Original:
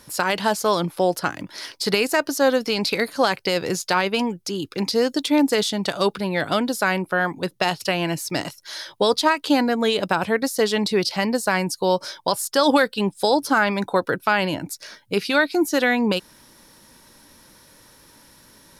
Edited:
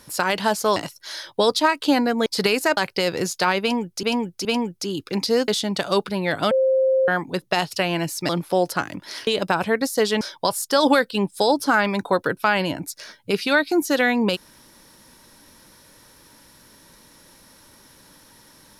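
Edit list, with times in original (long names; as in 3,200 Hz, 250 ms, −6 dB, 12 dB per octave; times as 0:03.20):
0:00.76–0:01.74: swap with 0:08.38–0:09.88
0:02.25–0:03.26: remove
0:04.10–0:04.52: repeat, 3 plays
0:05.13–0:05.57: remove
0:06.60–0:07.17: beep over 527 Hz −15 dBFS
0:10.82–0:12.04: remove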